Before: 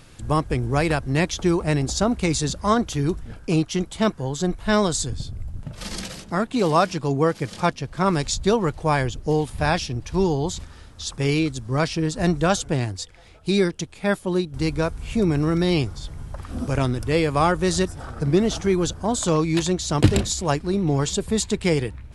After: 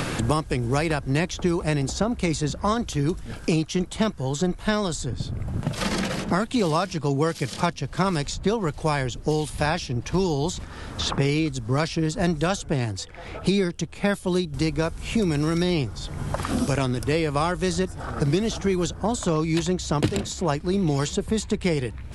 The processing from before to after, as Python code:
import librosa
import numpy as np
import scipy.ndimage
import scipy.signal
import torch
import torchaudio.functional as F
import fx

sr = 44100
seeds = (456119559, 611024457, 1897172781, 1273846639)

y = fx.band_squash(x, sr, depth_pct=100)
y = y * librosa.db_to_amplitude(-3.0)